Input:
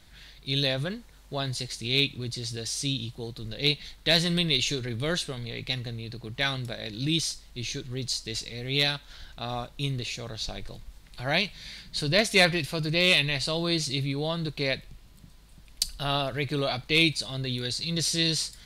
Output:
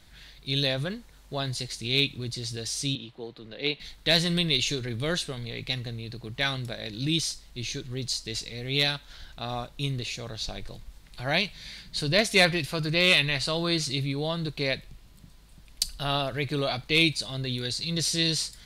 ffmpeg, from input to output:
-filter_complex "[0:a]asettb=1/sr,asplit=3[s0][s1][s2];[s0]atrim=end=2.954[s3];[s1]atrim=start=2.95:end=3.8,asetpts=PTS-STARTPTS,afade=t=in:d=0.004:c=qsin,afade=t=out:st=0.846:d=0.004:c=qsin,acrossover=split=220 3600:gain=0.178 1 0.126[s4][s5][s6];[s4][s5][s6]amix=inputs=3:normalize=0[s7];[s2]atrim=start=3.796[s8];[s3][s7]acrossfade=d=0.004:c1=hsin:c2=qsin[s9];[s9][s8]acrossfade=d=0.004:c1=qsin:c2=hsin,asettb=1/sr,asplit=3[s10][s11][s12];[s10]atrim=end=12.714[s13];[s11]atrim=start=12.71:end=13.92,asetpts=PTS-STARTPTS,afade=t=in:d=0.004:c=qsin,afade=t=out:st=1.206:d=0.004:c=qsin,equalizer=f=1400:w=1.6:g=5[s14];[s12]atrim=start=13.916[s15];[s13][s14]acrossfade=d=0.004:c1=hsin:c2=qsin[s16];[s16][s15]acrossfade=d=0.004:c1=qsin:c2=hsin"

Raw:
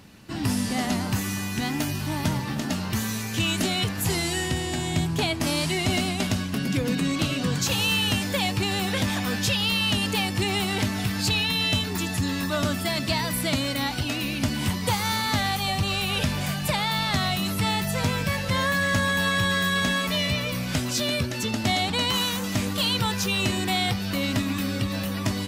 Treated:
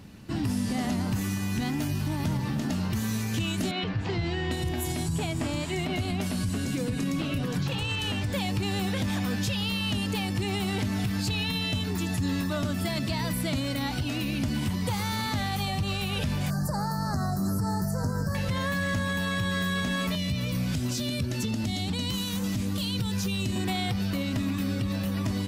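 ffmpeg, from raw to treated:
-filter_complex "[0:a]asettb=1/sr,asplit=3[s0][s1][s2];[s0]atrim=end=3.714[s3];[s1]atrim=start=3.71:end=8.33,asetpts=PTS-STARTPTS,afade=t=in:d=0.004:c=qsin,afade=t=out:st=4.616:d=0.004:c=qsin,acrossover=split=200|4400[s4][s5][s6];[s4]adelay=120[s7];[s6]adelay=800[s8];[s7][s5][s8]amix=inputs=3:normalize=0,atrim=end_sample=203742[s9];[s2]atrim=start=8.326[s10];[s3][s9]acrossfade=d=0.004:c1=hsin:c2=qsin[s11];[s11][s10]acrossfade=d=0.004:c1=qsin:c2=hsin,asettb=1/sr,asplit=3[s12][s13][s14];[s12]atrim=end=16.504[s15];[s13]atrim=start=16.5:end=18.35,asetpts=PTS-STARTPTS,afade=t=in:d=0.004:c=qsin,afade=t=out:st=1.846:d=0.004:c=qsin,asuperstop=centerf=2800:order=12:qfactor=1[s16];[s14]atrim=start=18.346[s17];[s15][s16]acrossfade=d=0.004:c1=hsin:c2=qsin[s18];[s18][s17]acrossfade=d=0.004:c1=qsin:c2=hsin,asettb=1/sr,asplit=3[s19][s20][s21];[s19]atrim=end=20.154[s22];[s20]atrim=start=20.15:end=23.56,asetpts=PTS-STARTPTS,afade=t=in:d=0.004:c=qsin,afade=t=out:st=3.406:d=0.004:c=qsin,acrossover=split=340|3000[s23][s24][s25];[s24]acompressor=threshold=0.0158:ratio=6:attack=3.2:release=140:knee=2.83:detection=peak[s26];[s23][s26][s25]amix=inputs=3:normalize=0[s27];[s21]atrim=start=23.556[s28];[s22][s27]acrossfade=d=0.004:c1=hsin:c2=qsin[s29];[s29][s28]acrossfade=d=0.004:c1=qsin:c2=hsin,lowshelf=f=390:g=8,alimiter=limit=0.133:level=0:latency=1:release=97,volume=0.708"

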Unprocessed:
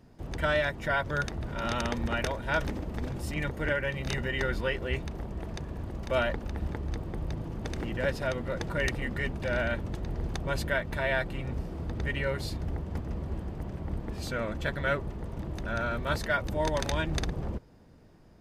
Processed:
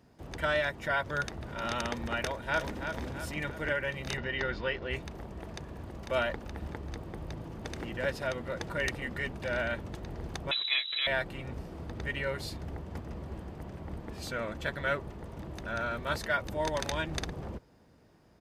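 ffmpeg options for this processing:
-filter_complex "[0:a]asplit=2[s0][s1];[s1]afade=t=in:st=2.24:d=0.01,afade=t=out:st=2.86:d=0.01,aecho=0:1:330|660|990|1320|1650|1980:0.446684|0.223342|0.111671|0.0558354|0.0279177|0.0139589[s2];[s0][s2]amix=inputs=2:normalize=0,asettb=1/sr,asplit=3[s3][s4][s5];[s3]atrim=end=4.174[s6];[s4]atrim=start=4.17:end=4.91,asetpts=PTS-STARTPTS,afade=t=in:d=0.004:c=qsin,afade=t=out:st=0.736:d=0.004:c=qsin,lowpass=f=5400:w=0.5412,lowpass=f=5400:w=1.3066[s7];[s5]atrim=start=4.906[s8];[s6][s7]acrossfade=d=0.004:c1=hsin:c2=qsin[s9];[s9][s8]acrossfade=d=0.004:c1=qsin:c2=hsin,asettb=1/sr,asplit=3[s10][s11][s12];[s10]atrim=end=10.514[s13];[s11]atrim=start=10.51:end=11.07,asetpts=PTS-STARTPTS,afade=t=in:d=0.004:c=qsin,afade=t=out:st=0.556:d=0.004:c=qsin,lowpass=f=3400:t=q:w=0.5098,lowpass=f=3400:t=q:w=0.6013,lowpass=f=3400:t=q:w=0.9,lowpass=f=3400:t=q:w=2.563,afreqshift=-4000[s14];[s12]atrim=start=11.066[s15];[s13][s14]acrossfade=d=0.004:c1=hsin:c2=qsin[s16];[s16][s15]acrossfade=d=0.004:c1=qsin:c2=hsin,highpass=43,lowshelf=f=350:g=-5.5,volume=0.891"

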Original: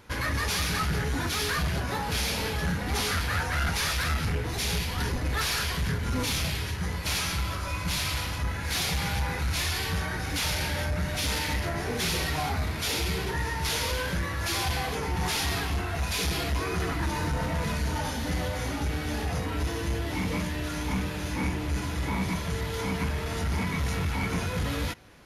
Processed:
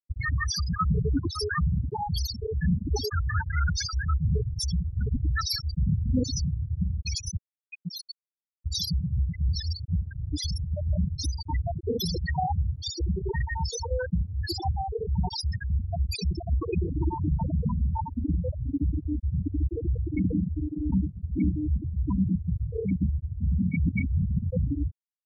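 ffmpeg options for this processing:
-filter_complex "[0:a]asettb=1/sr,asplit=3[s0][s1][s2];[s0]atrim=end=7.374[s3];[s1]atrim=start=7.37:end=8.66,asetpts=PTS-STARTPTS,afade=t=in:d=0.004:c=qsin,afade=t=out:st=1.286:d=0.004:c=qsin,highpass=170[s4];[s2]atrim=start=8.656[s5];[s3][s4]acrossfade=d=0.004:c1=hsin:c2=qsin[s6];[s6][s5]acrossfade=d=0.004:c1=qsin:c2=hsin,asettb=1/sr,asplit=3[s7][s8][s9];[s7]atrim=end=20.044[s10];[s8]atrim=start=20.04:end=21.2,asetpts=PTS-STARTPTS,afade=t=in:d=0.004:c=qsin,afade=t=out:st=1.156:d=0.004:c=qsin,aeval=exprs='val(0)+0.00251*(sin(2*PI*60*n/s)+sin(2*PI*2*60*n/s)/2+sin(2*PI*3*60*n/s)/3+sin(2*PI*4*60*n/s)/4+sin(2*PI*5*60*n/s)/5)':c=same[s11];[s9]atrim=start=21.196[s12];[s10][s11]acrossfade=d=0.004:c1=hsin:c2=qsin[s13];[s13][s12]acrossfade=d=0.004:c1=qsin:c2=hsin,asplit=3[s14][s15][s16];[s14]atrim=end=23.862[s17];[s15]atrim=start=23.858:end=24.372,asetpts=PTS-STARTPTS,areverse[s18];[s16]atrim=start=24.368[s19];[s17][s18]acrossfade=d=0.004:c1=hsin:c2=hsin[s20];[s20][s19]acrossfade=d=0.004:c1=hsin:c2=hsin,bass=f=250:g=0,treble=f=4000:g=11,afftfilt=real='re*gte(hypot(re,im),0.178)':imag='im*gte(hypot(re,im),0.178)':win_size=1024:overlap=0.75,equalizer=f=370:t=o:w=2.2:g=6,volume=1.5"

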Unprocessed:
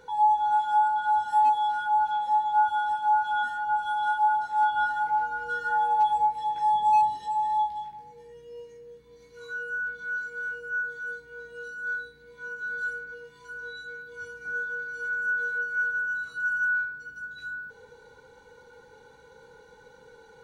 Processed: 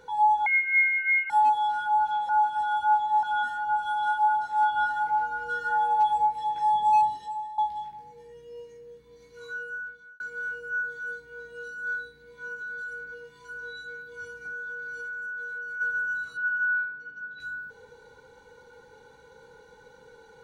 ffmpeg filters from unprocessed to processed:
-filter_complex "[0:a]asettb=1/sr,asplit=3[s0][s1][s2];[s0]atrim=end=0.464[s3];[s1]atrim=start=0.46:end=1.3,asetpts=PTS-STARTPTS,afade=t=in:d=0.004:c=qsin,afade=t=out:st=0.836:d=0.004:c=qsin,lowpass=f=2600:t=q:w=0.5098,lowpass=f=2600:t=q:w=0.6013,lowpass=f=2600:t=q:w=0.9,lowpass=f=2600:t=q:w=2.563,afreqshift=-3000[s4];[s2]atrim=start=1.296[s5];[s3][s4]acrossfade=d=0.004:c1=hsin:c2=qsin[s6];[s6][s5]acrossfade=d=0.004:c1=qsin:c2=hsin,asplit=3[s7][s8][s9];[s7]afade=t=out:st=12.56:d=0.02[s10];[s8]acompressor=threshold=0.02:ratio=6:attack=3.2:release=140:knee=1:detection=peak,afade=t=in:st=12.56:d=0.02,afade=t=out:st=15.8:d=0.02[s11];[s9]afade=t=in:st=15.8:d=0.02[s12];[s10][s11][s12]amix=inputs=3:normalize=0,asettb=1/sr,asplit=3[s13][s14][s15];[s13]atrim=end=16.374[s16];[s14]atrim=start=16.37:end=17.4,asetpts=PTS-STARTPTS,afade=t=in:d=0.004:c=qsin,afade=t=out:st=1.026:d=0.004:c=qsin,highpass=160,lowpass=3300[s17];[s15]atrim=start=17.396[s18];[s16][s17]acrossfade=d=0.004:c1=hsin:c2=qsin[s19];[s19][s18]acrossfade=d=0.004:c1=qsin:c2=hsin,asplit=5[s20][s21][s22][s23][s24];[s20]atrim=end=2.292[s25];[s21]atrim=start=2.288:end=3.232,asetpts=PTS-STARTPTS,areverse[s26];[s22]atrim=start=3.228:end=7.58,asetpts=PTS-STARTPTS,afade=t=out:st=3.812:d=0.54:silence=0.149624[s27];[s23]atrim=start=7.58:end=10.2,asetpts=PTS-STARTPTS,afade=t=in:d=0.004:c=hsin:silence=0.149624,afade=t=out:st=1.9:d=0.72[s28];[s24]atrim=start=10.2,asetpts=PTS-STARTPTS,afade=t=in:d=0.004:c=hsin[s29];[s25][s26]acrossfade=d=0.004:c1=hsin:c2=hsin[s30];[s27][s28][s29]concat=n=3:v=0:a=1[s31];[s30][s31]acrossfade=d=0.004:c1=hsin:c2=hsin"

